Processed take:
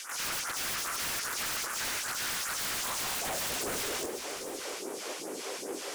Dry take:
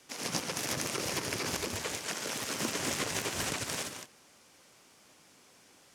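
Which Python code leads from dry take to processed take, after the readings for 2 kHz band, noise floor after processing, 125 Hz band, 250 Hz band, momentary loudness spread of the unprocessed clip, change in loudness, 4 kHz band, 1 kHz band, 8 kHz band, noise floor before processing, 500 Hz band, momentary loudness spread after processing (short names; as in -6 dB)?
+2.5 dB, -41 dBFS, -8.0 dB, -4.0 dB, 3 LU, +1.0 dB, +2.0 dB, +2.5 dB, +2.5 dB, -61 dBFS, +0.5 dB, 7 LU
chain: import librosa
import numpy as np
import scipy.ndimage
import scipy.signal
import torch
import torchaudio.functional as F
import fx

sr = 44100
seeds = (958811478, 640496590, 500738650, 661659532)

p1 = fx.low_shelf(x, sr, hz=470.0, db=6.5)
p2 = fx.over_compress(p1, sr, threshold_db=-50.0, ratio=-1.0)
p3 = p1 + (p2 * 10.0 ** (-2.5 / 20.0))
p4 = fx.filter_sweep_highpass(p3, sr, from_hz=1400.0, to_hz=400.0, start_s=2.71, end_s=3.7, q=2.8)
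p5 = fx.phaser_stages(p4, sr, stages=2, low_hz=110.0, high_hz=4200.0, hz=2.5, feedback_pct=25)
p6 = 10.0 ** (-35.5 / 20.0) * (np.abs((p5 / 10.0 ** (-35.5 / 20.0) + 3.0) % 4.0 - 2.0) - 1.0)
p7 = p6 + fx.echo_single(p6, sr, ms=687, db=-13.5, dry=0)
y = p7 * 10.0 ** (6.5 / 20.0)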